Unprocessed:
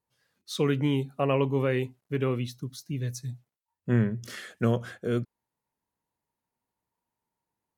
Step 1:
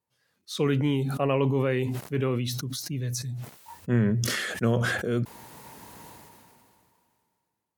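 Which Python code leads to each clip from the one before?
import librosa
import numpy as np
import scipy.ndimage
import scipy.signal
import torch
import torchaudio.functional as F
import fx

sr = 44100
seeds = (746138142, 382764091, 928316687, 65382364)

y = scipy.signal.sosfilt(scipy.signal.butter(2, 67.0, 'highpass', fs=sr, output='sos'), x)
y = fx.sustainer(y, sr, db_per_s=24.0)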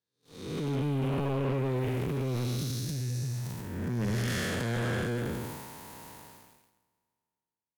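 y = fx.spec_blur(x, sr, span_ms=411.0)
y = fx.transient(y, sr, attack_db=-8, sustain_db=7)
y = fx.leveller(y, sr, passes=3)
y = y * 10.0 ** (-8.5 / 20.0)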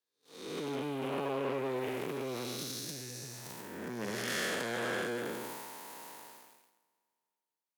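y = scipy.signal.sosfilt(scipy.signal.butter(2, 350.0, 'highpass', fs=sr, output='sos'), x)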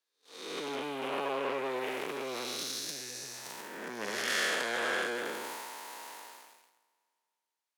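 y = fx.weighting(x, sr, curve='A')
y = y * 10.0 ** (4.0 / 20.0)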